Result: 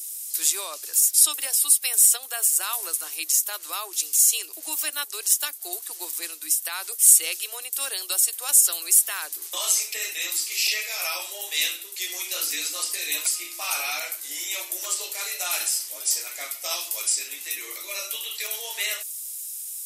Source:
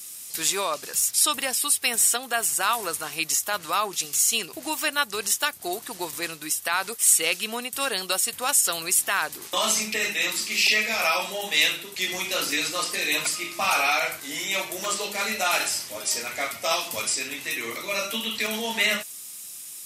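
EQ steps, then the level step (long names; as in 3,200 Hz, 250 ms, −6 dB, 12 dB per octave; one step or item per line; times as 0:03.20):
Butterworth high-pass 290 Hz 96 dB per octave
high-shelf EQ 3,300 Hz +12 dB
high-shelf EQ 7,300 Hz +8 dB
−11.5 dB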